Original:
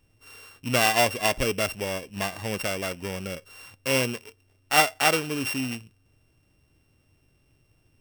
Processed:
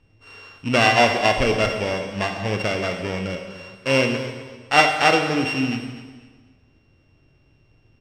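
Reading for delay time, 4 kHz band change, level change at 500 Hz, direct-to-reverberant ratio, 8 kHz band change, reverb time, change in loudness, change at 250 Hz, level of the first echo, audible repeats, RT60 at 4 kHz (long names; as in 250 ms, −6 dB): 252 ms, +4.0 dB, +6.5 dB, 4.0 dB, −5.0 dB, 1.4 s, +5.0 dB, +7.0 dB, −15.0 dB, 2, 1.4 s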